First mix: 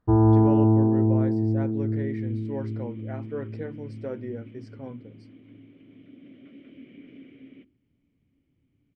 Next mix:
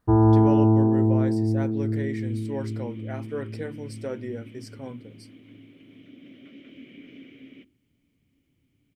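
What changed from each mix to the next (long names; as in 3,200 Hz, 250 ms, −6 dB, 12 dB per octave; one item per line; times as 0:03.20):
master: remove head-to-tape spacing loss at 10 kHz 27 dB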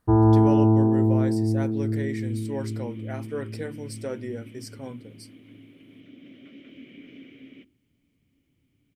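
speech: add high-shelf EQ 6,000 Hz +10 dB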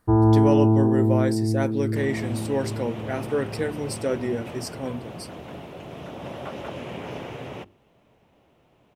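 speech +7.0 dB
second sound: remove formant filter i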